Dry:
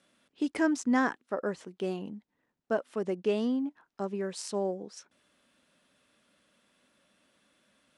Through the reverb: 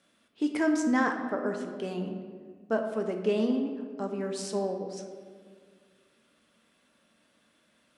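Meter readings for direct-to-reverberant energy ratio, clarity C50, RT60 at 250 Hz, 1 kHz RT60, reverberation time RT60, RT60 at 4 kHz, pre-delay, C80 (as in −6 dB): 3.5 dB, 6.0 dB, 2.2 s, 1.6 s, 1.9 s, 1.0 s, 4 ms, 7.5 dB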